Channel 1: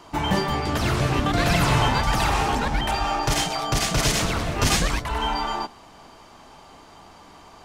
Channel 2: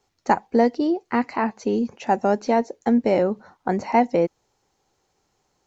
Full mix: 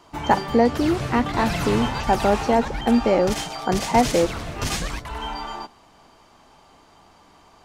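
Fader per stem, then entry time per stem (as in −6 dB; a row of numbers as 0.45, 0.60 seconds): −5.5, +0.5 decibels; 0.00, 0.00 seconds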